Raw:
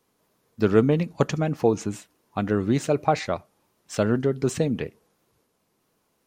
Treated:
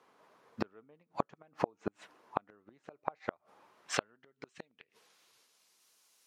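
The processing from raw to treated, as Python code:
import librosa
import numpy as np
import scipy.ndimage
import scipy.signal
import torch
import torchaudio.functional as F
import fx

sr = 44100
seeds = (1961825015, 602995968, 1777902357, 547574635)

y = fx.gate_flip(x, sr, shuts_db=-16.0, range_db=-42)
y = fx.filter_sweep_bandpass(y, sr, from_hz=1100.0, to_hz=6200.0, start_s=3.57, end_s=5.86, q=0.82)
y = F.gain(torch.from_numpy(y), 9.5).numpy()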